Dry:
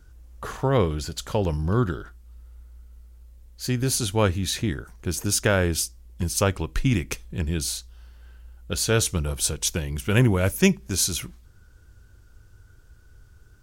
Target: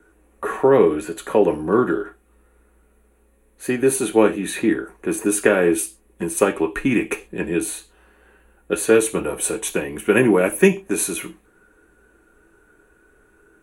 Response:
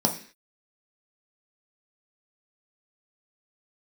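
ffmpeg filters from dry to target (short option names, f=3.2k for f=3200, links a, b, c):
-filter_complex "[0:a]acrossover=split=310|3000[a][b][c];[b]acompressor=threshold=-23dB:ratio=6[d];[a][d][c]amix=inputs=3:normalize=0,equalizer=f=125:t=o:w=0.33:g=-10,equalizer=f=800:t=o:w=0.33:g=7,equalizer=f=2.5k:t=o:w=0.33:g=11,equalizer=f=5k:t=o:w=0.33:g=-10[e];[1:a]atrim=start_sample=2205,asetrate=83790,aresample=44100[f];[e][f]afir=irnorm=-1:irlink=0,volume=-4dB"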